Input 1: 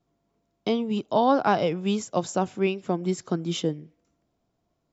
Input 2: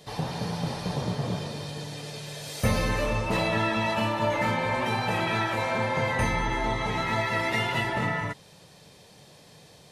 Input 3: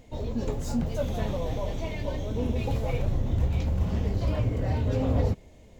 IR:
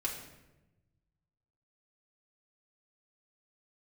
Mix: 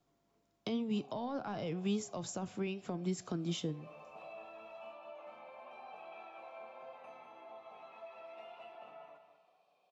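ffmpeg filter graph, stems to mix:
-filter_complex "[0:a]lowshelf=frequency=480:gain=-6.5,volume=-1.5dB,asplit=2[link_01][link_02];[link_02]volume=-23.5dB[link_03];[1:a]highpass=frequency=160:width=0.5412,highpass=frequency=160:width=1.3066,acompressor=threshold=-36dB:ratio=1.5,asplit=3[link_04][link_05][link_06];[link_04]bandpass=frequency=730:width_type=q:width=8,volume=0dB[link_07];[link_05]bandpass=frequency=1090:width_type=q:width=8,volume=-6dB[link_08];[link_06]bandpass=frequency=2440:width_type=q:width=8,volume=-9dB[link_09];[link_07][link_08][link_09]amix=inputs=3:normalize=0,adelay=850,volume=-4.5dB,asplit=2[link_10][link_11];[link_11]volume=-9dB[link_12];[link_01]acontrast=69,alimiter=limit=-16.5dB:level=0:latency=1:release=25,volume=0dB[link_13];[3:a]atrim=start_sample=2205[link_14];[link_03][link_14]afir=irnorm=-1:irlink=0[link_15];[link_12]aecho=0:1:197|394|591|788|985:1|0.38|0.144|0.0549|0.0209[link_16];[link_10][link_13][link_15][link_16]amix=inputs=4:normalize=0,flanger=delay=6.9:depth=2.8:regen=85:speed=1:shape=triangular,acrossover=split=230[link_17][link_18];[link_18]acompressor=threshold=-43dB:ratio=3[link_19];[link_17][link_19]amix=inputs=2:normalize=0"

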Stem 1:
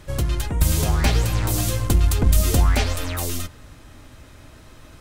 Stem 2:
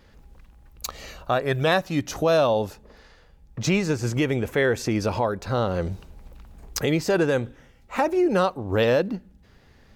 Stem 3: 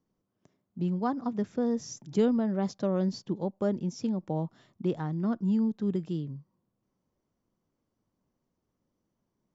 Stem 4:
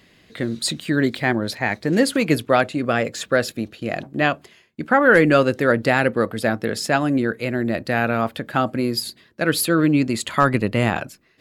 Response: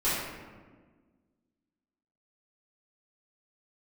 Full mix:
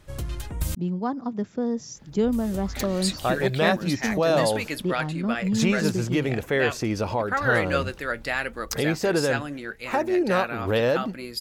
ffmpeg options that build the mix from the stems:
-filter_complex "[0:a]volume=-9dB,asplit=3[link_01][link_02][link_03];[link_01]atrim=end=0.75,asetpts=PTS-STARTPTS,afade=type=out:start_time=0.746:duration=0.004:curve=hsin[link_04];[link_02]atrim=start=0.75:end=2.23,asetpts=PTS-STARTPTS,volume=0[link_05];[link_03]atrim=start=2.23,asetpts=PTS-STARTPTS,afade=type=in:duration=0.004:curve=hsin[link_06];[link_04][link_05][link_06]concat=n=3:v=0:a=1[link_07];[1:a]adelay=1950,volume=-2dB[link_08];[2:a]volume=2dB,asplit=2[link_09][link_10];[3:a]tiltshelf=frequency=750:gain=-7,flanger=delay=2.1:depth=4.9:regen=71:speed=0.78:shape=sinusoidal,adelay=2400,volume=-7dB[link_11];[link_10]apad=whole_len=220929[link_12];[link_07][link_12]sidechaincompress=threshold=-35dB:ratio=8:attack=16:release=390[link_13];[link_13][link_08][link_09][link_11]amix=inputs=4:normalize=0"

